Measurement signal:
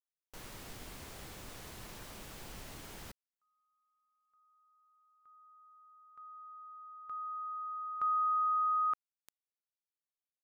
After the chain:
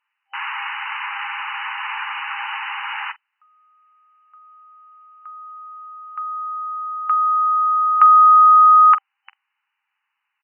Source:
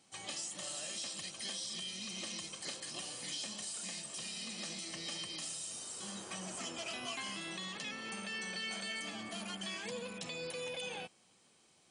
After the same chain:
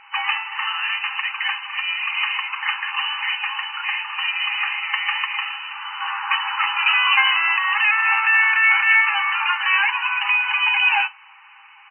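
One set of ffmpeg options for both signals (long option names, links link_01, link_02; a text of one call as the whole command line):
ffmpeg -i in.wav -af "afftfilt=real='re*between(b*sr/4096,790,3000)':imag='im*between(b*sr/4096,790,3000)':win_size=4096:overlap=0.75,apsyclip=30.5dB,aecho=1:1:10|46:0.282|0.133,volume=-2.5dB" out.wav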